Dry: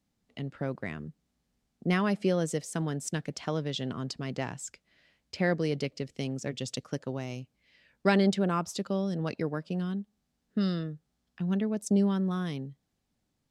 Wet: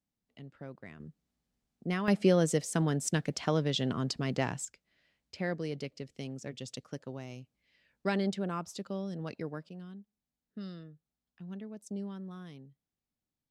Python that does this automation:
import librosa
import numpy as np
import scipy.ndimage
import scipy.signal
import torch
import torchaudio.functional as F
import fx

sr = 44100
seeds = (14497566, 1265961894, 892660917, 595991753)

y = fx.gain(x, sr, db=fx.steps((0.0, -12.0), (1.0, -6.0), (2.08, 2.5), (4.65, -7.0), (9.69, -14.0)))